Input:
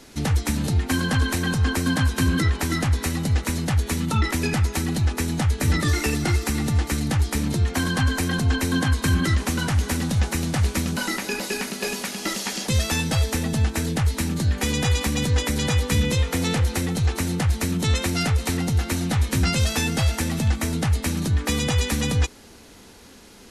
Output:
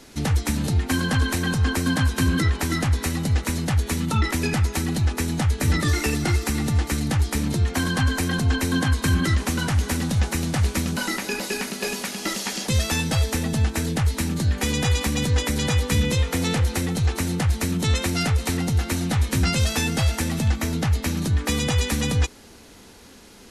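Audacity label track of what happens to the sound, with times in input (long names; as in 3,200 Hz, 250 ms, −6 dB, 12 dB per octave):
20.520000	21.210000	parametric band 9,000 Hz −7 dB 0.32 octaves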